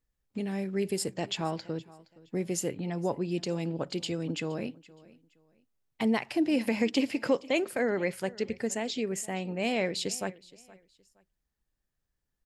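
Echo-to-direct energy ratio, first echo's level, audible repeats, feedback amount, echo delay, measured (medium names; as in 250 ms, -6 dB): -21.0 dB, -21.5 dB, 2, 27%, 469 ms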